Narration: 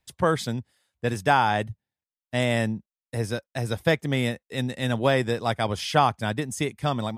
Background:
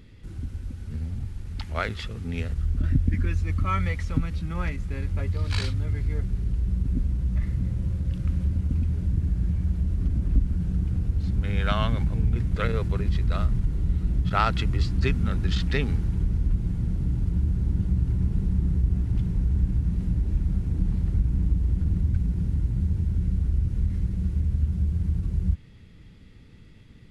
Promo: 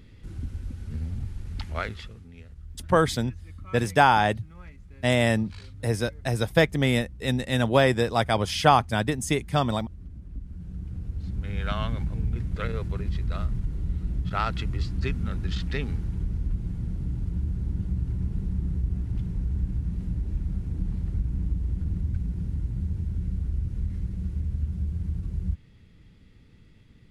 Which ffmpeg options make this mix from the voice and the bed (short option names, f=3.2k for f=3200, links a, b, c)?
-filter_complex "[0:a]adelay=2700,volume=2dB[a];[1:a]volume=12dB,afade=t=out:st=1.64:d=0.65:silence=0.149624,afade=t=in:st=10.33:d=1.37:silence=0.237137[b];[a][b]amix=inputs=2:normalize=0"